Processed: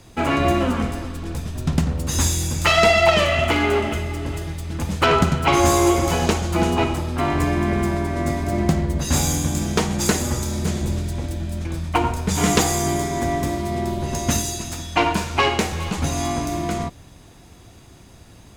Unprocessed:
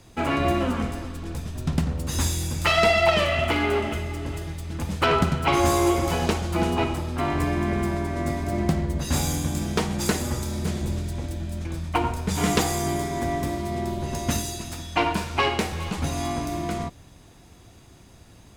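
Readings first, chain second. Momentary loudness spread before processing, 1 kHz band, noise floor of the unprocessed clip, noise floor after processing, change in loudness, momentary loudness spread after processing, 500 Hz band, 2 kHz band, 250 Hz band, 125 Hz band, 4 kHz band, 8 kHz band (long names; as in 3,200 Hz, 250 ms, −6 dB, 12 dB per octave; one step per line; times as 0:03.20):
11 LU, +4.0 dB, −50 dBFS, −46 dBFS, +4.0 dB, 11 LU, +4.0 dB, +4.0 dB, +4.0 dB, +4.0 dB, +4.5 dB, +7.0 dB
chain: dynamic equaliser 6,700 Hz, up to +5 dB, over −50 dBFS, Q 3.5
level +4 dB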